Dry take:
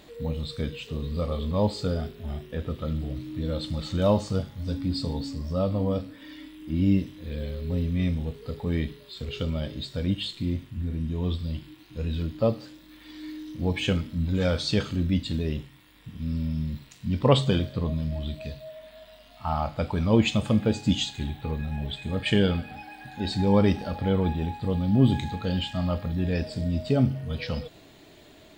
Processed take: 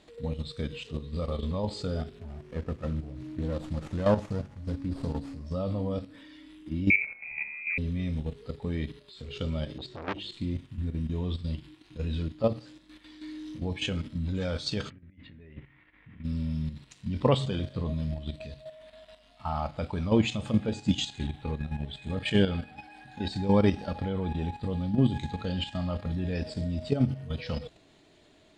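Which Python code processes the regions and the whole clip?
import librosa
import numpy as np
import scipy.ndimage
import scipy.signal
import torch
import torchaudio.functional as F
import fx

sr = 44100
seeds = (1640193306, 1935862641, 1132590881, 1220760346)

y = fx.chain(x, sr, fx.peak_eq(hz=3400.0, db=-7.5, octaves=0.2),
    fx.running_max(window=9), at=(2.2, 5.46))
y = fx.chain(y, sr, fx.freq_invert(carrier_hz=2500),
    fx.sustainer(db_per_s=120.0), at=(6.9, 7.78))
y = fx.chain(y, sr, fx.bessel_lowpass(hz=4800.0, order=2),
    fx.peak_eq(hz=360.0, db=14.0, octaves=0.38),
    fx.transformer_sat(knee_hz=1700.0), at=(9.78, 10.32))
y = fx.chain(y, sr, fx.ladder_lowpass(hz=2300.0, resonance_pct=60),
    fx.over_compress(threshold_db=-42.0, ratio=-0.5), at=(14.9, 16.24))
y = scipy.signal.sosfilt(scipy.signal.butter(4, 10000.0, 'lowpass', fs=sr, output='sos'), y)
y = fx.hum_notches(y, sr, base_hz=60, count=2)
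y = fx.level_steps(y, sr, step_db=10)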